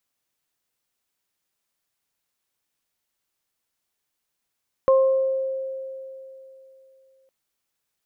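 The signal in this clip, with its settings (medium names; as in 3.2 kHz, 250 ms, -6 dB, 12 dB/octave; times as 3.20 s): additive tone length 2.41 s, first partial 531 Hz, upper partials -9 dB, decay 3.12 s, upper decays 0.78 s, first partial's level -12.5 dB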